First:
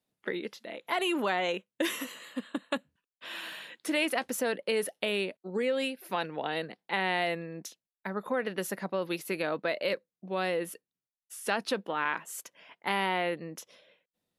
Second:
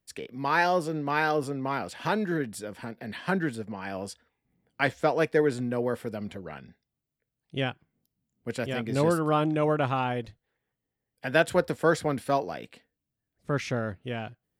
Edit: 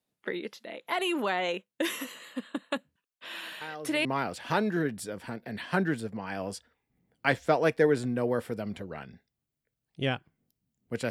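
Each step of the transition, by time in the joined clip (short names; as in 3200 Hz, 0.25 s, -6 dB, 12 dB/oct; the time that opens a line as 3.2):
first
3.61 add second from 1.16 s 0.44 s -14.5 dB
4.05 switch to second from 1.6 s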